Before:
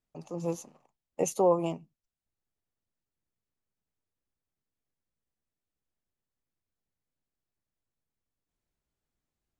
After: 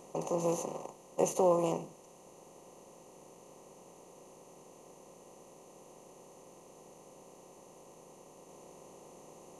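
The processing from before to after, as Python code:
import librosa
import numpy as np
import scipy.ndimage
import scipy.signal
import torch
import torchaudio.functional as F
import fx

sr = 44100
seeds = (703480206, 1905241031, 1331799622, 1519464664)

y = fx.bin_compress(x, sr, power=0.4)
y = y * librosa.db_to_amplitude(-5.0)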